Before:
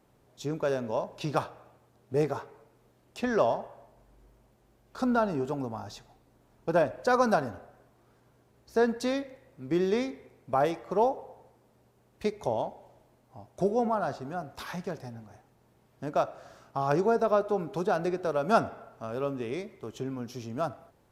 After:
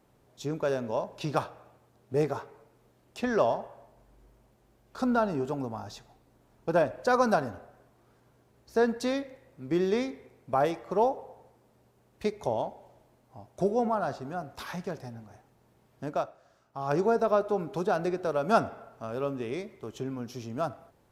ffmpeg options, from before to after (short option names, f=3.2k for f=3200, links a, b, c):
-filter_complex "[0:a]asplit=3[a][b][c];[a]atrim=end=16.37,asetpts=PTS-STARTPTS,afade=t=out:st=16.06:d=0.31:silence=0.251189[d];[b]atrim=start=16.37:end=16.69,asetpts=PTS-STARTPTS,volume=-12dB[e];[c]atrim=start=16.69,asetpts=PTS-STARTPTS,afade=t=in:d=0.31:silence=0.251189[f];[d][e][f]concat=n=3:v=0:a=1"